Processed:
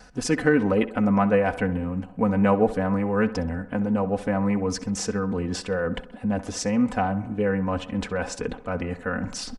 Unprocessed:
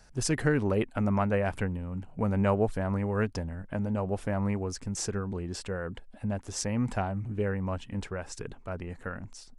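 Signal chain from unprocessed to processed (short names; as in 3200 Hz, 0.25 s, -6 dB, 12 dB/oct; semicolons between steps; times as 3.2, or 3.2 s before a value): HPF 86 Hz 6 dB/oct; high shelf 5900 Hz -10.5 dB; comb 4 ms, depth 69%; reverse; upward compressor, threshold -26 dBFS; reverse; vibrato 0.44 Hz 5 cents; on a send: tape echo 66 ms, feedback 67%, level -14.5 dB, low-pass 2800 Hz; on the sum: gain +5 dB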